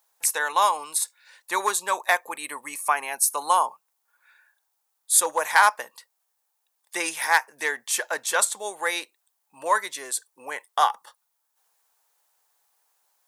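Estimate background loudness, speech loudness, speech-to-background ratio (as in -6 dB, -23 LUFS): -42.0 LUFS, -24.0 LUFS, 18.0 dB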